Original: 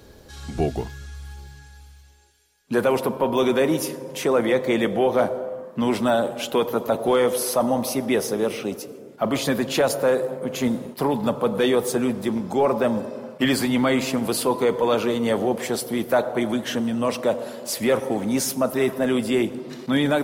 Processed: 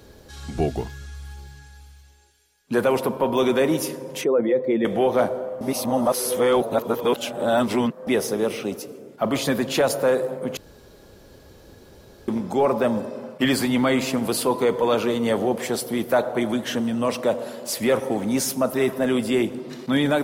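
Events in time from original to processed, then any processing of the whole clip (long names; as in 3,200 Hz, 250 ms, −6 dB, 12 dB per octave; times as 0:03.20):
0:04.21–0:04.85: expanding power law on the bin magnitudes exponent 1.6
0:05.61–0:08.07: reverse
0:10.57–0:12.28: fill with room tone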